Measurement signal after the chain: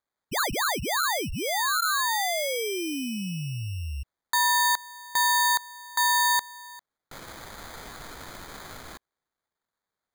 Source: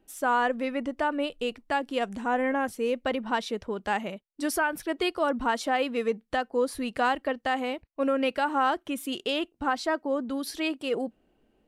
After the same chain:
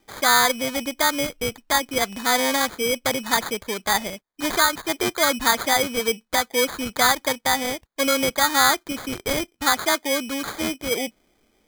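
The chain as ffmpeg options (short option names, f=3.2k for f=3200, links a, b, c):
-af "acrusher=samples=16:mix=1:aa=0.000001,tiltshelf=f=970:g=-5,volume=6dB"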